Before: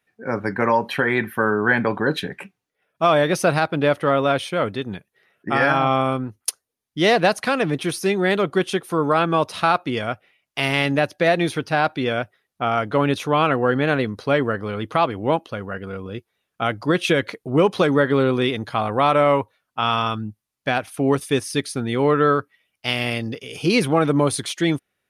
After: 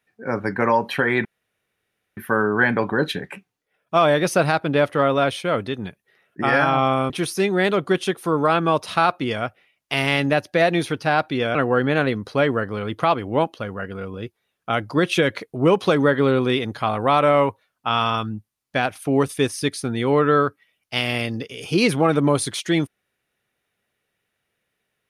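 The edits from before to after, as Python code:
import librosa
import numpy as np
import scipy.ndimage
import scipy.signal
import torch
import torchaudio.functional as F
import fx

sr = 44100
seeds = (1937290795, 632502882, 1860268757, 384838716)

y = fx.edit(x, sr, fx.insert_room_tone(at_s=1.25, length_s=0.92),
    fx.cut(start_s=6.18, length_s=1.58),
    fx.cut(start_s=12.21, length_s=1.26), tone=tone)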